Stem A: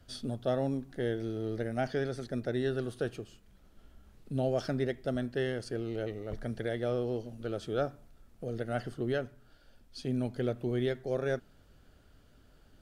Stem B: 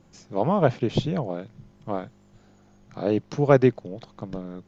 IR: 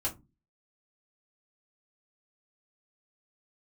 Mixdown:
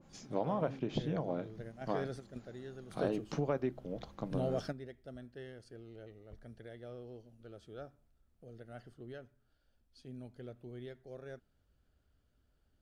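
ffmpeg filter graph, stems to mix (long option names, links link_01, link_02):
-filter_complex "[0:a]equalizer=frequency=63:width=1.2:gain=7,volume=-5.5dB,afade=type=in:start_time=1.52:duration=0.66:silence=0.298538[link_01];[1:a]lowshelf=frequency=65:gain=-5.5,acompressor=threshold=-27dB:ratio=6,adynamicequalizer=threshold=0.00251:dfrequency=2500:dqfactor=0.7:tfrequency=2500:tqfactor=0.7:attack=5:release=100:ratio=0.375:range=2.5:mode=cutabove:tftype=highshelf,volume=-4.5dB,asplit=3[link_02][link_03][link_04];[link_03]volume=-15.5dB[link_05];[link_04]apad=whole_len=565238[link_06];[link_01][link_06]sidechaingate=range=-11dB:threshold=-56dB:ratio=16:detection=peak[link_07];[2:a]atrim=start_sample=2205[link_08];[link_05][link_08]afir=irnorm=-1:irlink=0[link_09];[link_07][link_02][link_09]amix=inputs=3:normalize=0"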